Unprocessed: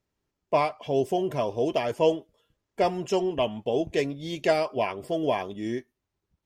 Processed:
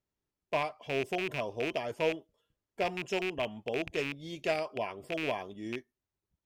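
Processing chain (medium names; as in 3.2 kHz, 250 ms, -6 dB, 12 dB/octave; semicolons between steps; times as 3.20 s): rattle on loud lows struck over -32 dBFS, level -16 dBFS; trim -8.5 dB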